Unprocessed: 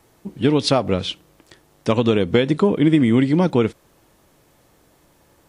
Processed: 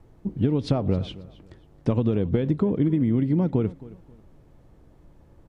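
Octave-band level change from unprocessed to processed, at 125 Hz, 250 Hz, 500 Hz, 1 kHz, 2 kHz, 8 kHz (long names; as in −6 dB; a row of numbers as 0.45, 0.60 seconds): −1.5 dB, −5.5 dB, −8.5 dB, −12.5 dB, −17.0 dB, can't be measured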